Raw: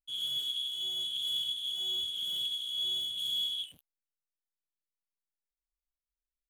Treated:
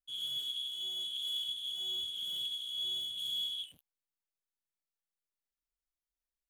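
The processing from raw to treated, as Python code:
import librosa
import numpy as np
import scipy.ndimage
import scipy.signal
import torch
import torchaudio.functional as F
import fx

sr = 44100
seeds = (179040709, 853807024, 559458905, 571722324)

y = fx.highpass(x, sr, hz=fx.line((0.73, 110.0), (1.47, 310.0)), slope=12, at=(0.73, 1.47), fade=0.02)
y = y * librosa.db_to_amplitude(-3.5)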